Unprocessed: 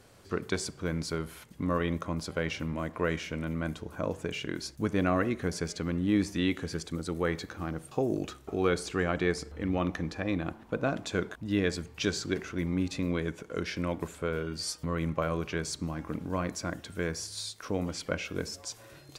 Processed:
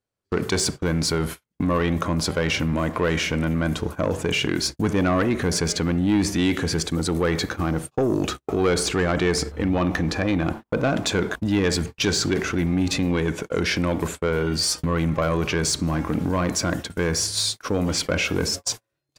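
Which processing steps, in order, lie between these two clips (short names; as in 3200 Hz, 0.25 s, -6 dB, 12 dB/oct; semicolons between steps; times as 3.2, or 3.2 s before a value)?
gate -42 dBFS, range -45 dB; in parallel at -3 dB: negative-ratio compressor -37 dBFS, ratio -1; on the sum: soft clip -22 dBFS, distortion -15 dB; gain +8.5 dB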